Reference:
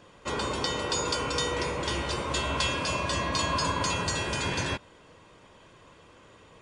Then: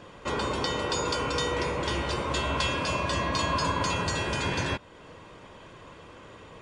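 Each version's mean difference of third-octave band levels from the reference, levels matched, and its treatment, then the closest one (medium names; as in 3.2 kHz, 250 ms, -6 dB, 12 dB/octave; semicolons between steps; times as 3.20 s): 2.0 dB: treble shelf 5.1 kHz -7.5 dB; in parallel at +1.5 dB: compression, threshold -44 dBFS, peak gain reduction 18 dB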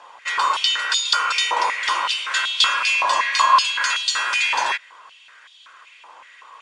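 13.0 dB: Bessel low-pass 8.9 kHz; step-sequenced high-pass 5.3 Hz 880–3500 Hz; trim +6.5 dB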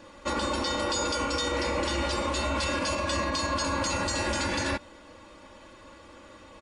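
3.0 dB: comb 3.5 ms, depth 91%; peak limiter -22 dBFS, peak gain reduction 9.5 dB; trim +2.5 dB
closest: first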